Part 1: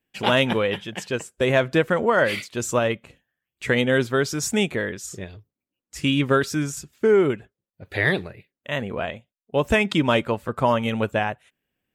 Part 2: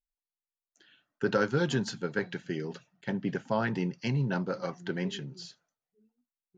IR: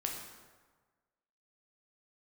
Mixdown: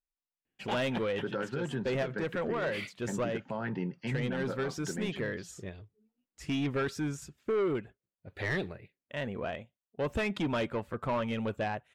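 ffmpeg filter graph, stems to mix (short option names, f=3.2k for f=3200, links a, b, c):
-filter_complex "[0:a]asoftclip=type=tanh:threshold=-19dB,adelay=450,volume=-6.5dB[a];[1:a]lowpass=3.7k,volume=-3dB[b];[a][b]amix=inputs=2:normalize=0,highshelf=f=4.8k:g=-10,alimiter=level_in=0.5dB:limit=-24dB:level=0:latency=1:release=122,volume=-0.5dB"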